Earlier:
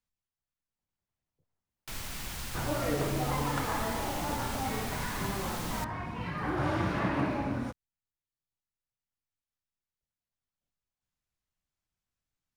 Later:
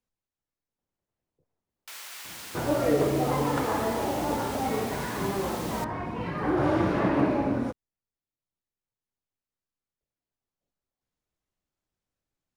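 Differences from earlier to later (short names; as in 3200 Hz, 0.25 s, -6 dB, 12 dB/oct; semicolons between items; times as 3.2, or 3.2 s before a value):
first sound: add HPF 1300 Hz 12 dB/oct; master: add bell 420 Hz +10 dB 1.9 oct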